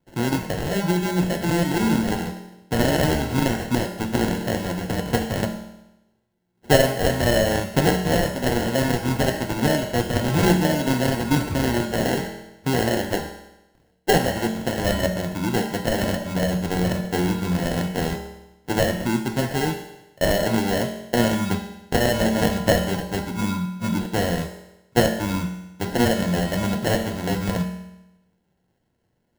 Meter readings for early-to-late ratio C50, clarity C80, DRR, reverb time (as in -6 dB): 7.5 dB, 9.5 dB, 3.5 dB, 0.95 s